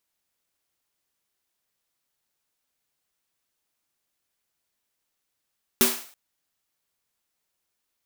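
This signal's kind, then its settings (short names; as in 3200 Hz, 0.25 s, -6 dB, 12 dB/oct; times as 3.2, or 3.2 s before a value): snare drum length 0.33 s, tones 240 Hz, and 380 Hz, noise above 500 Hz, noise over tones 3 dB, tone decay 0.29 s, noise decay 0.49 s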